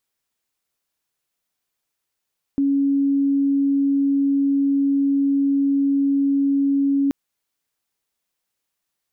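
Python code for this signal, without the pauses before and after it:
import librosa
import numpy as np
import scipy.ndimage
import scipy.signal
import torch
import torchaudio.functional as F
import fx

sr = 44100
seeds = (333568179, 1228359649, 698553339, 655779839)

y = 10.0 ** (-15.5 / 20.0) * np.sin(2.0 * np.pi * (278.0 * (np.arange(round(4.53 * sr)) / sr)))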